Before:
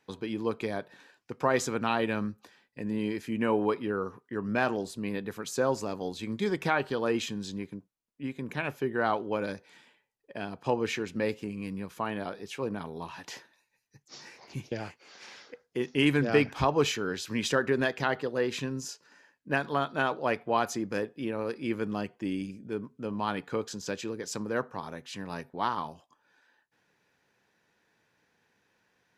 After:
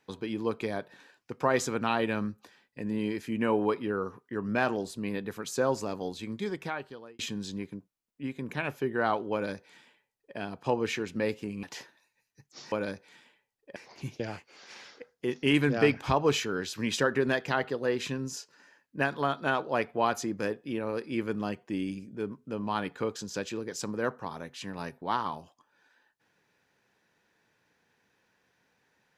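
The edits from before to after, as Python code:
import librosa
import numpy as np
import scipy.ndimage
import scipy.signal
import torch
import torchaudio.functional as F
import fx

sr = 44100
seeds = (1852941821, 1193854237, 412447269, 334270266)

y = fx.edit(x, sr, fx.fade_out_span(start_s=6.0, length_s=1.19),
    fx.duplicate(start_s=9.33, length_s=1.04, to_s=14.28),
    fx.cut(start_s=11.63, length_s=1.56), tone=tone)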